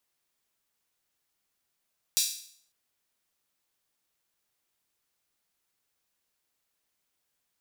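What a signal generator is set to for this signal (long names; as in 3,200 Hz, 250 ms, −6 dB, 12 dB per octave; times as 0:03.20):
open synth hi-hat length 0.55 s, high-pass 4,400 Hz, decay 0.58 s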